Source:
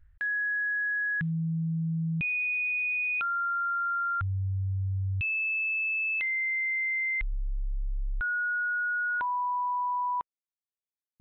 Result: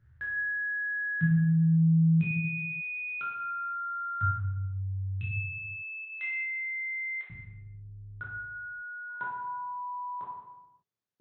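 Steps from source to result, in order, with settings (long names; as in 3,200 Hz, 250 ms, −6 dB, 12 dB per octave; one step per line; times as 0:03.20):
0:06.02–0:07.30: high-pass filter 520 Hz 24 dB per octave
brickwall limiter −33.5 dBFS, peak gain reduction 8 dB
convolution reverb RT60 1.0 s, pre-delay 3 ms, DRR −6.5 dB
level −7.5 dB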